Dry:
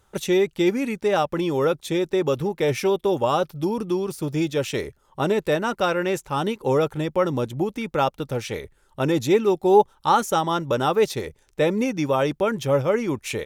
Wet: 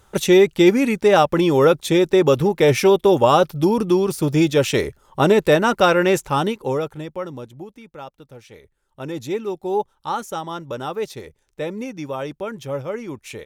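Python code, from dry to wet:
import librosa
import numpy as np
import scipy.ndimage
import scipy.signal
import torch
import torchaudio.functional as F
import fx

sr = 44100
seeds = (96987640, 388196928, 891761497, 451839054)

y = fx.gain(x, sr, db=fx.line((6.26, 7.0), (6.82, -3.5), (7.93, -15.0), (8.47, -15.0), (9.23, -6.5)))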